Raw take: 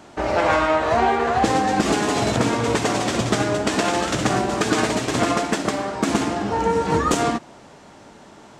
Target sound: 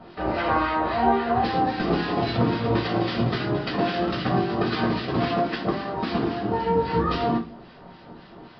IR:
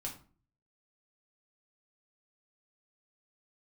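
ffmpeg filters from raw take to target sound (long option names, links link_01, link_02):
-filter_complex "[0:a]asplit=2[link_01][link_02];[link_02]acompressor=threshold=-32dB:ratio=6,volume=-1dB[link_03];[link_01][link_03]amix=inputs=2:normalize=0,acrossover=split=1300[link_04][link_05];[link_04]aeval=exprs='val(0)*(1-0.7/2+0.7/2*cos(2*PI*3.7*n/s))':channel_layout=same[link_06];[link_05]aeval=exprs='val(0)*(1-0.7/2-0.7/2*cos(2*PI*3.7*n/s))':channel_layout=same[link_07];[link_06][link_07]amix=inputs=2:normalize=0[link_08];[1:a]atrim=start_sample=2205,asetrate=57330,aresample=44100[link_09];[link_08][link_09]afir=irnorm=-1:irlink=0,aresample=11025,aresample=44100"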